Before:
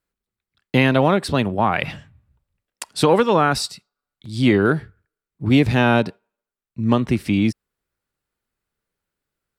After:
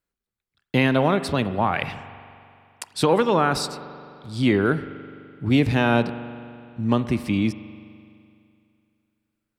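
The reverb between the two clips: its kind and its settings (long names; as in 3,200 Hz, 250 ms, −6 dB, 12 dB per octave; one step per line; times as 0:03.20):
spring reverb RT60 2.5 s, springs 42 ms, chirp 65 ms, DRR 12.5 dB
level −3.5 dB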